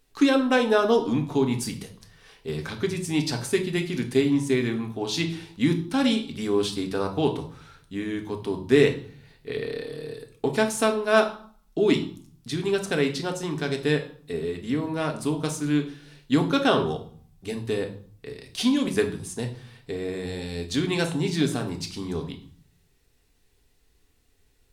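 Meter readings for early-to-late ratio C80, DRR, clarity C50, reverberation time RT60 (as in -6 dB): 15.5 dB, 3.5 dB, 11.0 dB, 0.50 s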